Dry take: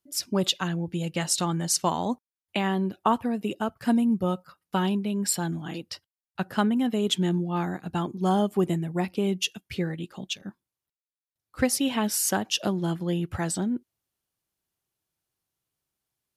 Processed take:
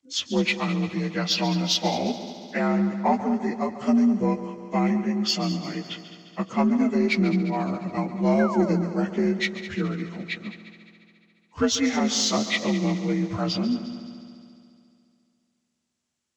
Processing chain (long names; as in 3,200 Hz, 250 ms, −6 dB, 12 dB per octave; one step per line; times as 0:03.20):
partials spread apart or drawn together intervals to 85%
in parallel at −4.5 dB: soft clipping −21 dBFS, distortion −16 dB
on the sum: sound drawn into the spectrogram fall, 0:08.39–0:08.76, 420–1,700 Hz −31 dBFS
echo machine with several playback heads 70 ms, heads second and third, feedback 61%, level −14 dB